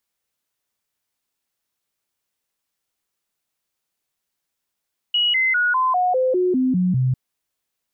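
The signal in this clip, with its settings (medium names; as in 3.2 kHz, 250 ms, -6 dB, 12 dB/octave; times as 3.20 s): stepped sine 2.91 kHz down, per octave 2, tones 10, 0.20 s, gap 0.00 s -15.5 dBFS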